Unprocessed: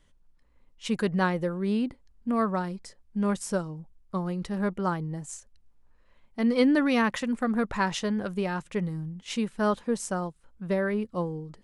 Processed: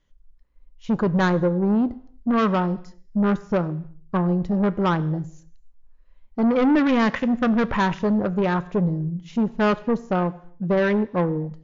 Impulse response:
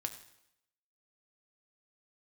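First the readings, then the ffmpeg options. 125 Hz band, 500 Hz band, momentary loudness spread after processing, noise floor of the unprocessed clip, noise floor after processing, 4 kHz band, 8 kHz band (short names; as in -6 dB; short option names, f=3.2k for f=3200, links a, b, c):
+8.5 dB, +6.0 dB, 9 LU, -62 dBFS, -53 dBFS, +1.0 dB, under -10 dB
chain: -filter_complex "[0:a]deesser=1,afwtdn=0.0158,asoftclip=type=tanh:threshold=-26dB,asplit=2[a][b];[1:a]atrim=start_sample=2205,afade=t=out:st=0.37:d=0.01,atrim=end_sample=16758[c];[b][c]afir=irnorm=-1:irlink=0,volume=-2.5dB[d];[a][d]amix=inputs=2:normalize=0,volume=7dB" -ar 16000 -c:a libmp3lame -b:a 80k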